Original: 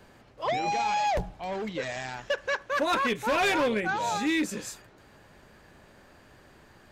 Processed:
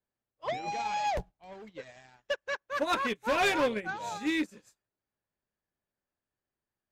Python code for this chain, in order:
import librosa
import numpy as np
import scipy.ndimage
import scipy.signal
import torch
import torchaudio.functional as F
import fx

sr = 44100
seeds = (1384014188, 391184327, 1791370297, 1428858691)

y = fx.upward_expand(x, sr, threshold_db=-48.0, expansion=2.5)